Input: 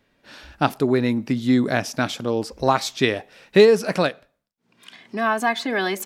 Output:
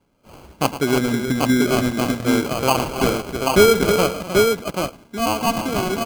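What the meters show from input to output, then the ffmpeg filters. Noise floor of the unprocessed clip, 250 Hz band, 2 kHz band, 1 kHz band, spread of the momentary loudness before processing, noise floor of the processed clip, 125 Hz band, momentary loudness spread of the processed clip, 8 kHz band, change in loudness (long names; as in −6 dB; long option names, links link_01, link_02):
−71 dBFS, +2.5 dB, +0.5 dB, +2.5 dB, 10 LU, −53 dBFS, +3.0 dB, 10 LU, +9.0 dB, +1.5 dB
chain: -af "aecho=1:1:108|252|315|457|784|787:0.237|0.168|0.376|0.106|0.15|0.708,acrusher=samples=24:mix=1:aa=0.000001"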